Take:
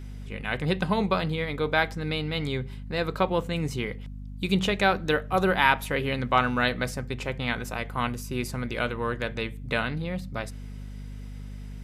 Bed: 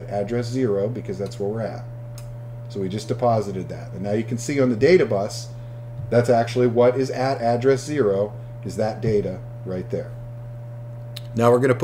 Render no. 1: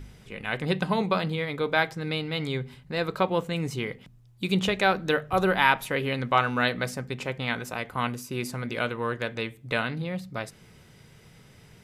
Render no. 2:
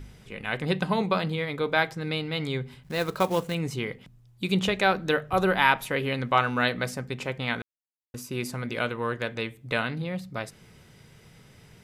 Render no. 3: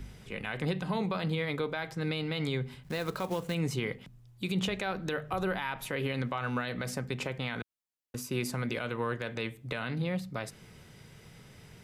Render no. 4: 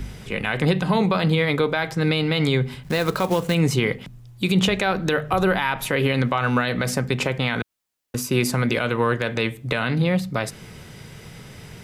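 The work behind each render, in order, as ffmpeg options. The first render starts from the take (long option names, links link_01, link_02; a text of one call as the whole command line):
ffmpeg -i in.wav -af "bandreject=frequency=50:width_type=h:width=4,bandreject=frequency=100:width_type=h:width=4,bandreject=frequency=150:width_type=h:width=4,bandreject=frequency=200:width_type=h:width=4,bandreject=frequency=250:width_type=h:width=4" out.wav
ffmpeg -i in.wav -filter_complex "[0:a]asettb=1/sr,asplit=3[link_01][link_02][link_03];[link_01]atrim=end=2.834[link_04];[link_02]atrim=start=2.83:end=3.55,asetpts=PTS-STARTPTS,afade=type=in:duration=0.004:curve=qsin,afade=type=out:start_time=0.716:duration=0.004:curve=qsin,acrusher=bits=4:mode=log:mix=0:aa=0.000001[link_05];[link_03]atrim=start=3.546[link_06];[link_04][link_05]acrossfade=duration=0.004:curve1=hsin:curve2=qsin[link_07];[link_07][link_06]acrossfade=duration=0.004:curve1=qsin:curve2=hsin,asplit=3[link_08][link_09][link_10];[link_08]atrim=end=7.62,asetpts=PTS-STARTPTS,afade=type=out:start_time=7.616:duration=0.004:curve=hsin[link_11];[link_09]atrim=start=7.62:end=8.14,asetpts=PTS-STARTPTS,volume=0[link_12];[link_10]atrim=start=8.14,asetpts=PTS-STARTPTS,afade=type=in:duration=0.004:curve=hsin[link_13];[link_11][link_12][link_13]concat=n=3:v=0:a=1" out.wav
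ffmpeg -i in.wav -filter_complex "[0:a]acrossover=split=130[link_01][link_02];[link_02]acompressor=threshold=-27dB:ratio=2.5[link_03];[link_01][link_03]amix=inputs=2:normalize=0,alimiter=limit=-21dB:level=0:latency=1:release=50" out.wav
ffmpeg -i in.wav -af "volume=12dB" out.wav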